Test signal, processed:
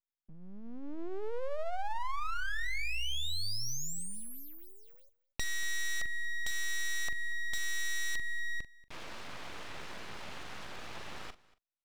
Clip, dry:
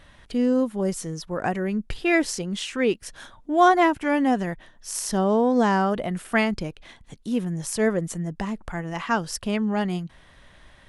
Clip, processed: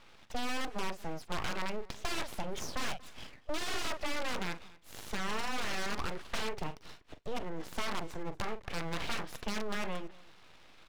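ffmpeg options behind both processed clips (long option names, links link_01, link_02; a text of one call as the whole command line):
ffmpeg -i in.wav -filter_complex "[0:a]asplit=2[link_01][link_02];[link_02]adelay=42,volume=-12dB[link_03];[link_01][link_03]amix=inputs=2:normalize=0,acrossover=split=420[link_04][link_05];[link_04]alimiter=level_in=0.5dB:limit=-24dB:level=0:latency=1:release=25,volume=-0.5dB[link_06];[link_06][link_05]amix=inputs=2:normalize=0,aeval=exprs='(mod(10*val(0)+1,2)-1)/10':channel_layout=same,highpass=230,lowpass=2600,aeval=exprs='abs(val(0))':channel_layout=same,acompressor=threshold=-29dB:ratio=6,asplit=2[link_07][link_08];[link_08]aecho=0:1:235:0.0794[link_09];[link_07][link_09]amix=inputs=2:normalize=0" out.wav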